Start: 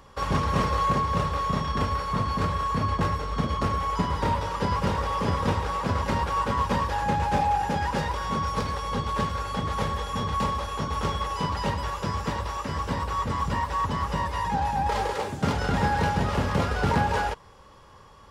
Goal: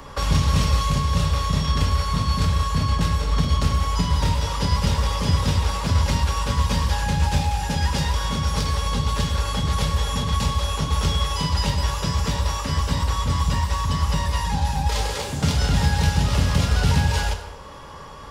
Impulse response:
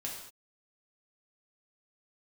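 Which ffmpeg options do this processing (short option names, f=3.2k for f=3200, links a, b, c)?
-filter_complex "[0:a]asplit=2[a][b];[1:a]atrim=start_sample=2205[c];[b][c]afir=irnorm=-1:irlink=0,volume=-1.5dB[d];[a][d]amix=inputs=2:normalize=0,acrossover=split=130|3000[e][f][g];[f]acompressor=threshold=-37dB:ratio=5[h];[e][h][g]amix=inputs=3:normalize=0,volume=7.5dB"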